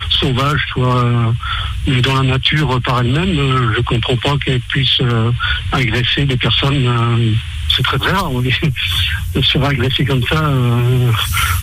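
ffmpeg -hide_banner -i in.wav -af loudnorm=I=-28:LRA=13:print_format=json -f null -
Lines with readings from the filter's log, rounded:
"input_i" : "-14.4",
"input_tp" : "-1.4",
"input_lra" : "0.4",
"input_thresh" : "-24.4",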